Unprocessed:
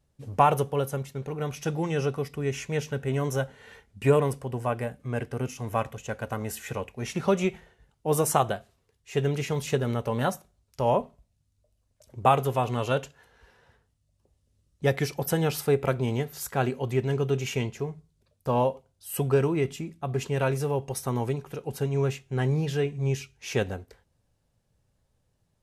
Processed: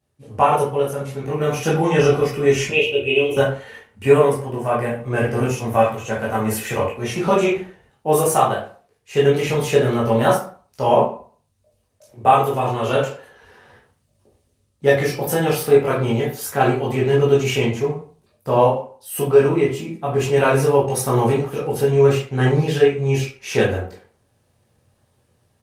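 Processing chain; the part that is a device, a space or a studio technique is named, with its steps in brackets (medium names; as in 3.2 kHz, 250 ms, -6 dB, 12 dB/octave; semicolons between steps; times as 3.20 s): 2.70–3.37 s: FFT filter 100 Hz 0 dB, 170 Hz -25 dB, 360 Hz +3 dB, 750 Hz -11 dB, 1.8 kHz -24 dB, 2.6 kHz +15 dB, 5.1 kHz -18 dB, 9.6 kHz -11 dB; far-field microphone of a smart speaker (reverberation RT60 0.45 s, pre-delay 13 ms, DRR -6.5 dB; high-pass 120 Hz 12 dB/octave; level rider gain up to 9 dB; trim -1 dB; Opus 32 kbps 48 kHz)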